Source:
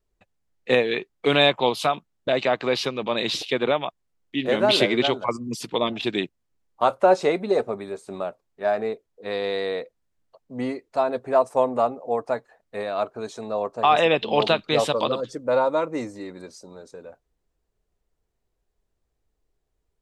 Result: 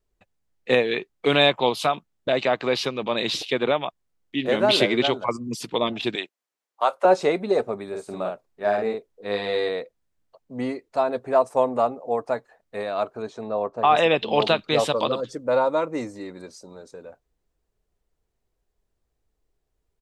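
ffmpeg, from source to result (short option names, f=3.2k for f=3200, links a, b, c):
-filter_complex "[0:a]asettb=1/sr,asplit=3[a][b][c];[a]atrim=end=6.154[d];[b]atrim=start=6.15:end=7.05,asetpts=PTS-STARTPTS,afade=t=in:d=0.004:c=qsin,afade=t=out:st=0.896:d=0.004:c=qsin,highpass=580[e];[c]atrim=start=7.046[f];[d][e]acrossfade=d=0.004:c1=hsin:c2=qsin[g];[g][f]acrossfade=d=0.004:c1=qsin:c2=hsin,asplit=3[h][i][j];[h]afade=t=out:st=7.92:d=0.02[k];[i]asplit=2[l][m];[m]adelay=49,volume=-3dB[n];[l][n]amix=inputs=2:normalize=0,afade=t=in:st=7.92:d=0.02,afade=t=out:st=9.68:d=0.02[o];[j]afade=t=in:st=9.68:d=0.02[p];[k][o][p]amix=inputs=3:normalize=0,asettb=1/sr,asplit=3[q][r][s];[q]atrim=end=13.224[t];[r]atrim=start=13.22:end=13.95,asetpts=PTS-STARTPTS,afade=t=in:d=0.004:c=qsin,afade=t=out:st=0.726:d=0.004:c=qsin,aemphasis=mode=reproduction:type=75fm[u];[s]atrim=start=13.946[v];[t][u]acrossfade=d=0.004:c1=hsin:c2=qsin[w];[w][v]acrossfade=d=0.004:c1=qsin:c2=hsin"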